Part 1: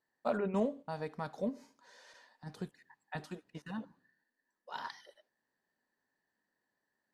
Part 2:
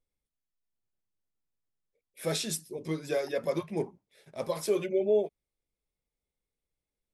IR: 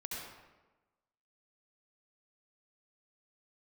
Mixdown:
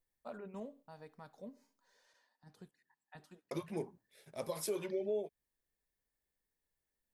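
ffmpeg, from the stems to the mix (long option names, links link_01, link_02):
-filter_complex "[0:a]volume=-14dB[link_01];[1:a]volume=-4dB,asplit=3[link_02][link_03][link_04];[link_02]atrim=end=2.07,asetpts=PTS-STARTPTS,afade=type=out:start_time=2.066:duration=0.004:curve=hsin[link_05];[link_03]atrim=start=2.07:end=3.51,asetpts=PTS-STARTPTS,volume=0[link_06];[link_04]atrim=start=3.51,asetpts=PTS-STARTPTS,afade=type=in:duration=0.004:curve=hsin[link_07];[link_05][link_06][link_07]concat=n=3:v=0:a=1[link_08];[link_01][link_08]amix=inputs=2:normalize=0,highshelf=frequency=10000:gain=10.5,acompressor=threshold=-38dB:ratio=2"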